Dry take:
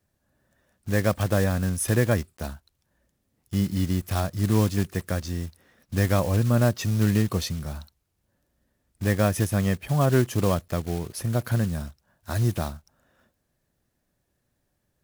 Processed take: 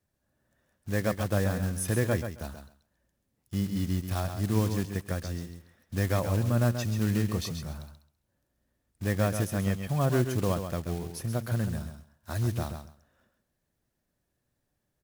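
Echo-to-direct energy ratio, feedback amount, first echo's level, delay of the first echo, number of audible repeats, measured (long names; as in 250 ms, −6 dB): −8.0 dB, 16%, −8.0 dB, 133 ms, 2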